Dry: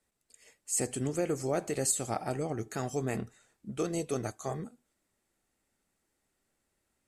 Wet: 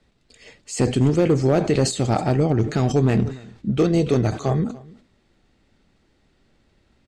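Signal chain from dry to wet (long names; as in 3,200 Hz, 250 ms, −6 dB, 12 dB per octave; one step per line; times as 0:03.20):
low-shelf EQ 370 Hz +11.5 dB
in parallel at −2 dB: downward compressor 6 to 1, threshold −38 dBFS, peak gain reduction 17 dB
on the sum: low-pass with resonance 4,000 Hz, resonance Q 1.7
gain into a clipping stage and back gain 17.5 dB
on a send: single-tap delay 291 ms −23 dB
on the sum: level that may fall only so fast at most 130 dB per second
level +7 dB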